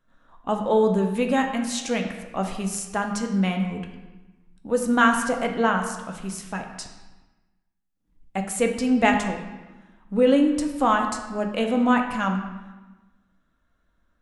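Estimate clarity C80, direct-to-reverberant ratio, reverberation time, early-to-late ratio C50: 8.5 dB, 3.0 dB, 1.2 s, 6.5 dB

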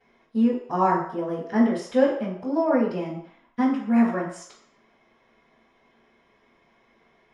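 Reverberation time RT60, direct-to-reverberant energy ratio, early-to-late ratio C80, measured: 0.60 s, −13.5 dB, 8.0 dB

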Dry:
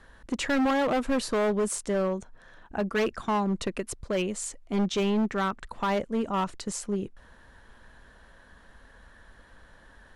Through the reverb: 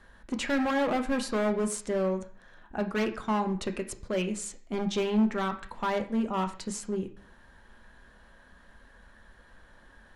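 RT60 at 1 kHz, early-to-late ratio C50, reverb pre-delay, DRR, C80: 0.50 s, 12.0 dB, 3 ms, 5.0 dB, 16.0 dB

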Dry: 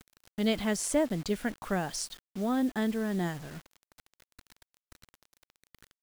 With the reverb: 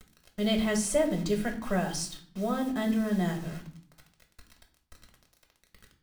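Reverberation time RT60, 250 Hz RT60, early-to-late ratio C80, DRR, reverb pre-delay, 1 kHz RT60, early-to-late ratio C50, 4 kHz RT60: 0.55 s, 0.85 s, 15.0 dB, 2.5 dB, 3 ms, 0.50 s, 10.5 dB, 0.40 s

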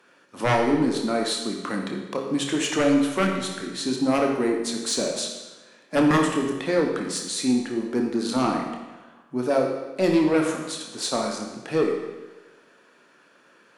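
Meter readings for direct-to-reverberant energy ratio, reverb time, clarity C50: 1.0 dB, 1.2 s, 3.5 dB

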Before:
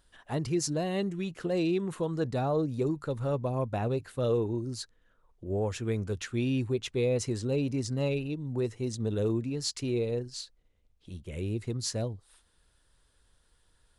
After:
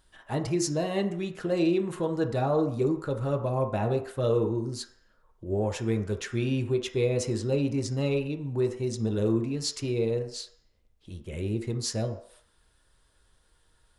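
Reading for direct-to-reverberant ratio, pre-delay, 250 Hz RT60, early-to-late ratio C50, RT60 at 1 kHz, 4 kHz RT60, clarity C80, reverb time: 3.5 dB, 3 ms, 0.40 s, 10.0 dB, 0.60 s, 0.65 s, 13.0 dB, 0.60 s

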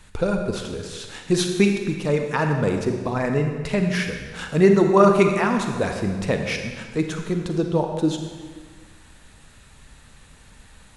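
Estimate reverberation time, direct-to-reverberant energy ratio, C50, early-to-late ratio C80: 1.6 s, 4.0 dB, 5.0 dB, 6.5 dB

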